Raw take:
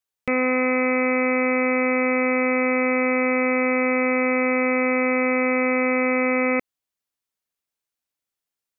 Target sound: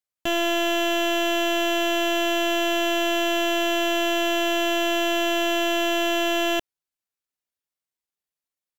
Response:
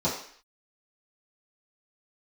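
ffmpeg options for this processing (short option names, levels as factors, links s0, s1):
-af "aeval=exprs='0.224*(cos(1*acos(clip(val(0)/0.224,-1,1)))-cos(1*PI/2))+0.0355*(cos(6*acos(clip(val(0)/0.224,-1,1)))-cos(6*PI/2))+0.00355*(cos(7*acos(clip(val(0)/0.224,-1,1)))-cos(7*PI/2))':c=same,asetrate=58866,aresample=44100,atempo=0.749154,volume=0.75"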